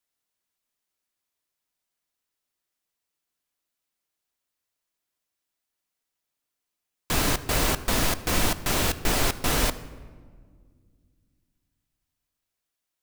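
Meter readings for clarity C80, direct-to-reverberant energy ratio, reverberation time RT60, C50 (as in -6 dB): 16.5 dB, 11.5 dB, 1.8 s, 15.0 dB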